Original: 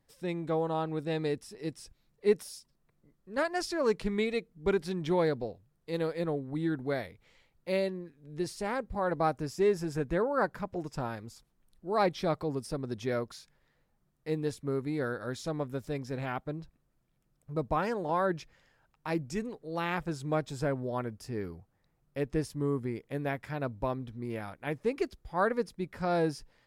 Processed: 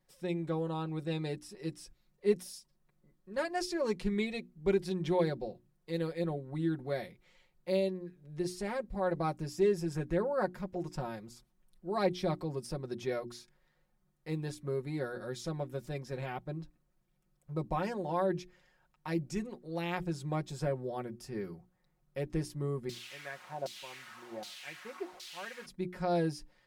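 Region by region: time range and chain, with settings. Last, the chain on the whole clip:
22.89–25.66 s: bass shelf 450 Hz +12 dB + word length cut 6-bit, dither triangular + LFO band-pass saw down 1.3 Hz 650–4400 Hz
whole clip: hum notches 60/120/180/240/300/360 Hz; comb 5.5 ms, depth 70%; dynamic bell 1.3 kHz, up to -6 dB, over -45 dBFS, Q 1.4; trim -3.5 dB

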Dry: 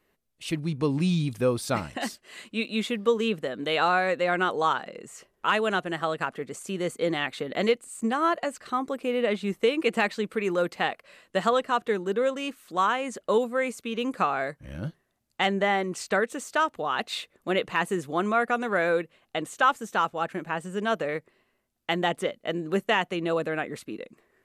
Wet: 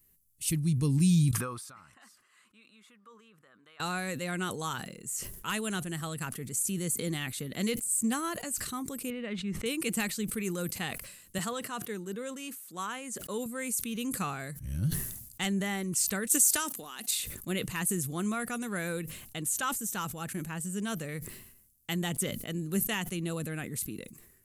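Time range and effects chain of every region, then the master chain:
1.31–3.80 s: compression 2.5:1, threshold -33 dBFS + band-pass filter 1.2 kHz, Q 3.3
9.10–9.66 s: low-pass 2 kHz + tilt shelf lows -4 dB, about 1.3 kHz
11.38–13.46 s: high-pass 330 Hz 6 dB/octave + treble shelf 3.5 kHz -7.5 dB
16.27–17.11 s: high-pass 190 Hz 24 dB/octave + treble shelf 3.6 kHz +9.5 dB + compression, threshold -28 dBFS
whole clip: FFT filter 120 Hz 0 dB, 620 Hz -23 dB, 3.7 kHz -11 dB, 11 kHz +11 dB; decay stretcher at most 58 dB/s; trim +6.5 dB

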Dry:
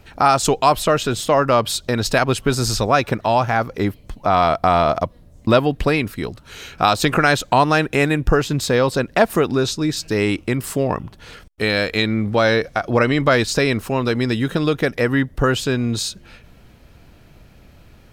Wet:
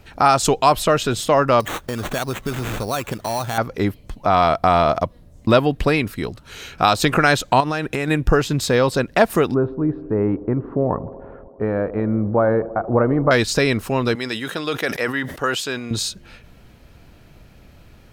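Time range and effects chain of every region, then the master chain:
1.60–3.58 s: sample-rate reducer 5 kHz + compression 2:1, threshold -25 dBFS
7.60–8.08 s: compression 12:1, threshold -17 dBFS + overload inside the chain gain 11 dB
9.54–13.31 s: low-pass 1.2 kHz 24 dB/octave + feedback echo behind a band-pass 79 ms, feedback 81%, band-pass 410 Hz, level -16 dB
14.15–15.91 s: high-pass 760 Hz 6 dB/octave + decay stretcher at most 92 dB/s
whole clip: none

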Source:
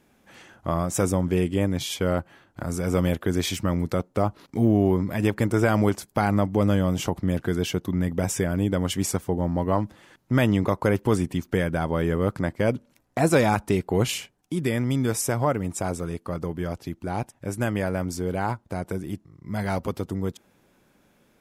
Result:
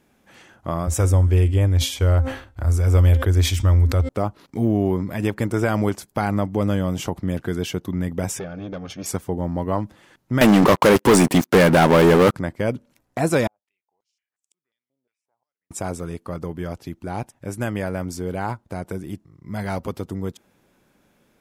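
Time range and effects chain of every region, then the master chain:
0.87–4.09 s: resonant low shelf 110 Hz +12.5 dB, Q 3 + de-hum 263.3 Hz, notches 35 + decay stretcher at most 120 dB/s
8.39–9.06 s: brick-wall FIR low-pass 6.7 kHz + valve stage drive 23 dB, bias 0.7 + comb of notches 990 Hz
10.41–12.34 s: high-pass 190 Hz + waveshaping leveller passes 5
13.47–15.71 s: inverted gate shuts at -27 dBFS, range -40 dB + step-sequenced band-pass 5.6 Hz 590–7600 Hz
whole clip: none

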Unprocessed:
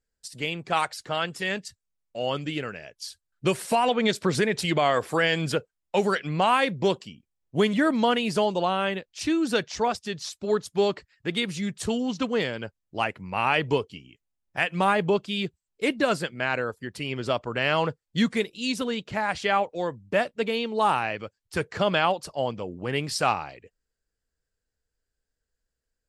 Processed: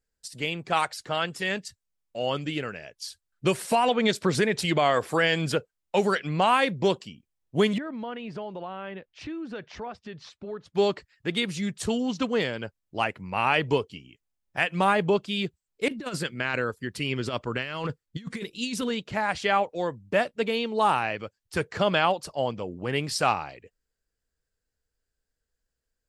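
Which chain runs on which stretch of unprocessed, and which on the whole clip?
7.78–10.75 s: low-pass 2.4 kHz + compression 2.5:1, threshold -38 dBFS
15.88–18.90 s: peaking EQ 710 Hz -6.5 dB 0.89 oct + compressor with a negative ratio -29 dBFS, ratio -0.5 + tape noise reduction on one side only decoder only
whole clip: none

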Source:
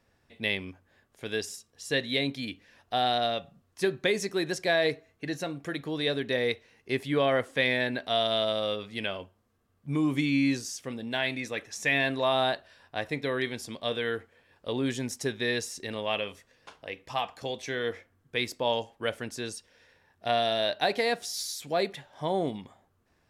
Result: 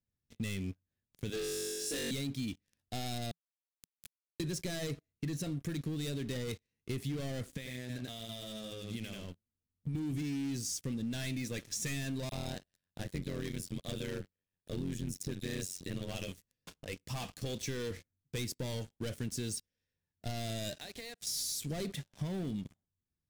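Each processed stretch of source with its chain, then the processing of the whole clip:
1.30–2.11 s: high-pass 260 Hz 24 dB/octave + treble shelf 2.6 kHz -4 dB + flutter echo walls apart 3.6 m, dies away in 1.4 s
3.31–4.40 s: amplifier tone stack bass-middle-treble 10-0-10 + compression 2.5:1, threshold -51 dBFS + word length cut 6-bit, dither none
7.52–9.95 s: delay 88 ms -4 dB + compression 10:1, threshold -39 dBFS
12.29–16.28 s: bands offset in time highs, lows 30 ms, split 5.1 kHz + AM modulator 91 Hz, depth 95%
20.75–21.27 s: frequency weighting A + compression 4:1, threshold -43 dBFS
whole clip: waveshaping leveller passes 5; FFT filter 170 Hz 0 dB, 850 Hz -20 dB, 8.3 kHz -5 dB; compression, threshold -26 dBFS; trim -7.5 dB

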